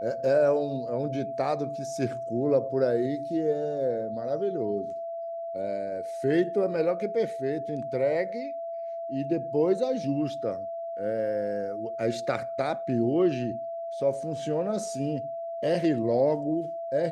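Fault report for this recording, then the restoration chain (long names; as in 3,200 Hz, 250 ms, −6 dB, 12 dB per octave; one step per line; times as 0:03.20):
whistle 670 Hz −32 dBFS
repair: notch filter 670 Hz, Q 30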